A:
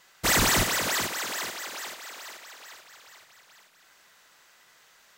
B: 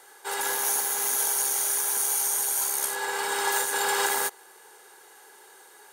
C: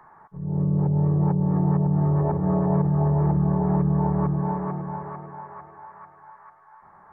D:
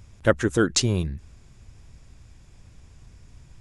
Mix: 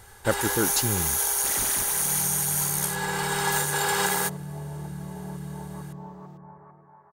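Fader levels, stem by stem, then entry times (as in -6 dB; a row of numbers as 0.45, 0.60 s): -12.5, +0.5, -15.0, -5.5 dB; 1.20, 0.00, 1.55, 0.00 s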